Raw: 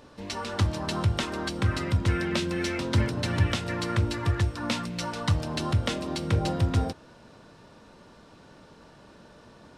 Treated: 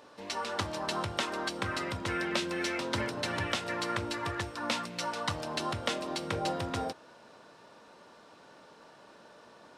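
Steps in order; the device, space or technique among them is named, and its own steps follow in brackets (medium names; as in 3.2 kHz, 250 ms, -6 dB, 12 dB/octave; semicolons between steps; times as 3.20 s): filter by subtraction (in parallel: low-pass 710 Hz 12 dB/octave + polarity flip); on the sum: trim -2 dB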